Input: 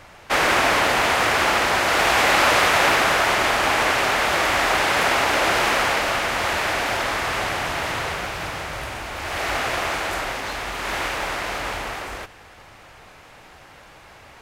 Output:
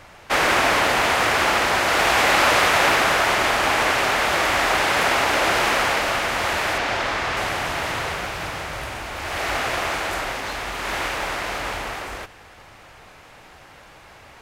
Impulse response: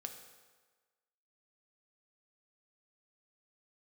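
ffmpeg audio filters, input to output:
-filter_complex "[0:a]asettb=1/sr,asplit=3[s0][s1][s2];[s0]atrim=end=6.784[s3];[s1]atrim=start=6.78:end=7.37,asetpts=PTS-STARTPTS,afade=t=in:d=0.004:c=qsin,afade=t=out:st=0.586:d=0.004:c=qsin,acrossover=split=7000[s4][s5];[s5]acompressor=threshold=0.00224:ratio=4:attack=1:release=60[s6];[s4][s6]amix=inputs=2:normalize=0[s7];[s2]atrim=start=7.366[s8];[s3][s7]acrossfade=d=0.004:c1=hsin:c2=qsin[s9];[s9][s8]acrossfade=d=0.004:c1=qsin:c2=hsin"

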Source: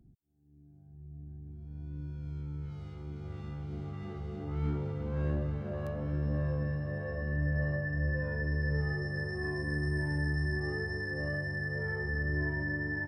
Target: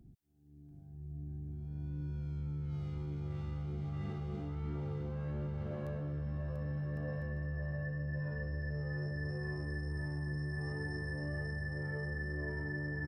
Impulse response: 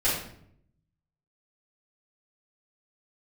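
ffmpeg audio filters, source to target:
-af "aecho=1:1:690|1104|1352|1501|1591:0.631|0.398|0.251|0.158|0.1,areverse,acompressor=threshold=0.0126:ratio=10,areverse,volume=1.33"

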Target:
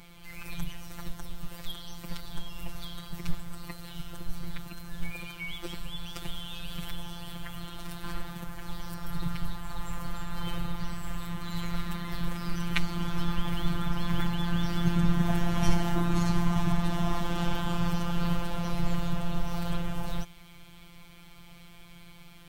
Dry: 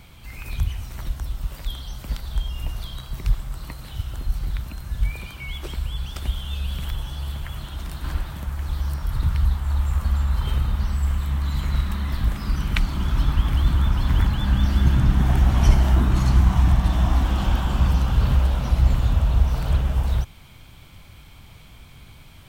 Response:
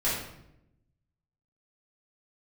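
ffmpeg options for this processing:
-af "afftfilt=real='hypot(re,im)*cos(PI*b)':imag='0':win_size=1024:overlap=0.75"

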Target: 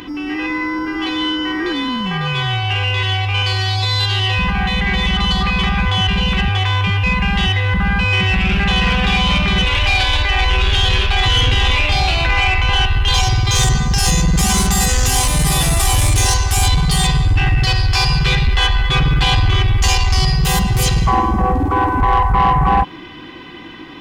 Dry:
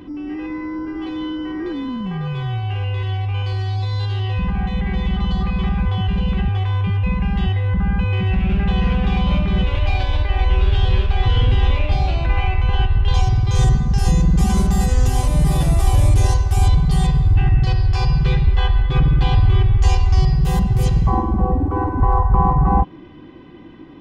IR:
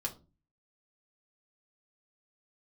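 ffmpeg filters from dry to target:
-filter_complex "[0:a]tiltshelf=f=930:g=-9,bandreject=f=580:w=12,asplit=2[s0][s1];[s1]alimiter=limit=0.15:level=0:latency=1,volume=0.75[s2];[s0][s2]amix=inputs=2:normalize=0,asoftclip=type=tanh:threshold=0.224,volume=2"

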